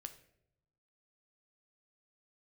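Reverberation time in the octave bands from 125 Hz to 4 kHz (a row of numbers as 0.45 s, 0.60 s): 1.3 s, 1.1 s, 0.90 s, 0.65 s, 0.60 s, 0.50 s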